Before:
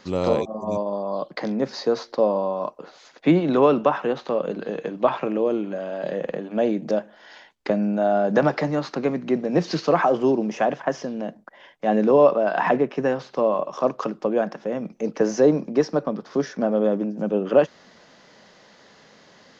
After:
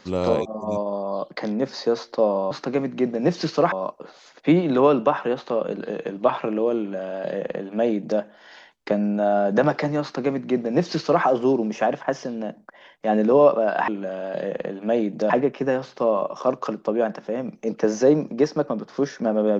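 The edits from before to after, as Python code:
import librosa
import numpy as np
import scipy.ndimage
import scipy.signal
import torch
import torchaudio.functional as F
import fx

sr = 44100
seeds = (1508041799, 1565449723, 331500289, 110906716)

y = fx.edit(x, sr, fx.duplicate(start_s=5.57, length_s=1.42, to_s=12.67),
    fx.duplicate(start_s=8.81, length_s=1.21, to_s=2.51), tone=tone)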